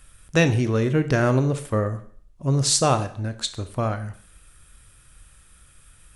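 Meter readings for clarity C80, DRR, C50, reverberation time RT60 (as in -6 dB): 17.0 dB, 10.0 dB, 13.5 dB, 0.55 s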